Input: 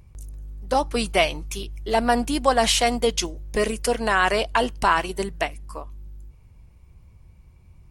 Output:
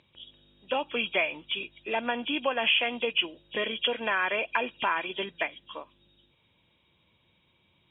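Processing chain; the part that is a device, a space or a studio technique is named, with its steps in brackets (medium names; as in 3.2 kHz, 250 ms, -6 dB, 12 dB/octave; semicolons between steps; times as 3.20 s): hearing aid with frequency lowering (knee-point frequency compression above 2.3 kHz 4:1; compression 2.5:1, threshold -22 dBFS, peak gain reduction 7 dB; cabinet simulation 350–6500 Hz, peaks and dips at 420 Hz -6 dB, 740 Hz -8 dB, 1.2 kHz -5 dB)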